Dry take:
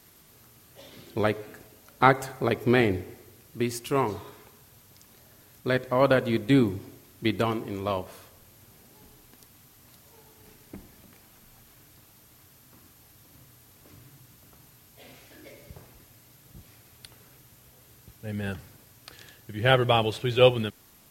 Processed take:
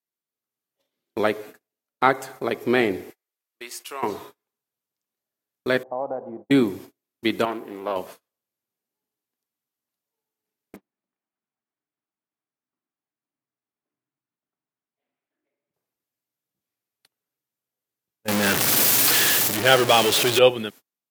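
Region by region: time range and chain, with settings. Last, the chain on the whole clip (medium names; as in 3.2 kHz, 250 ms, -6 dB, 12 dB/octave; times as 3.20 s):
3.10–4.03 s: high-pass 750 Hz + compression 2:1, threshold -39 dBFS
5.83–6.51 s: compression 2.5:1, threshold -23 dBFS + four-pole ladder low-pass 850 Hz, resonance 75%
7.45–7.96 s: high-pass 430 Hz 6 dB/octave + peaking EQ 5.9 kHz -12 dB 2.5 oct + loudspeaker Doppler distortion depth 0.28 ms
10.76–15.74 s: band-pass 120–2200 Hz + band-stop 500 Hz, Q 5.9 + loudspeaker Doppler distortion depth 0.68 ms
18.28–20.39 s: jump at every zero crossing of -20 dBFS + treble shelf 2 kHz +5 dB
whole clip: high-pass 230 Hz 12 dB/octave; gate -43 dBFS, range -37 dB; level rider gain up to 4.5 dB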